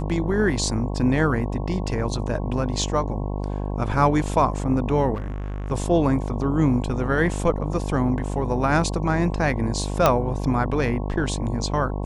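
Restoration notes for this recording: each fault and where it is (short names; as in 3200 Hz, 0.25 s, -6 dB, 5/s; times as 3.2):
buzz 50 Hz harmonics 22 -27 dBFS
5.14–5.72 clipped -26 dBFS
10.06 pop -3 dBFS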